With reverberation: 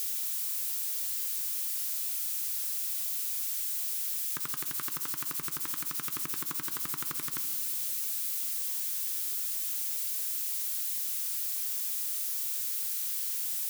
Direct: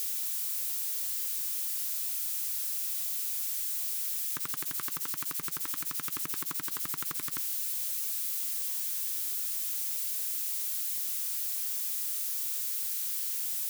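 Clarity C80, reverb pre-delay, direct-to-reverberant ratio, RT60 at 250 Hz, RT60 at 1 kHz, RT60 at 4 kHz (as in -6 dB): 13.5 dB, 5 ms, 10.5 dB, 3.7 s, 2.1 s, 1.3 s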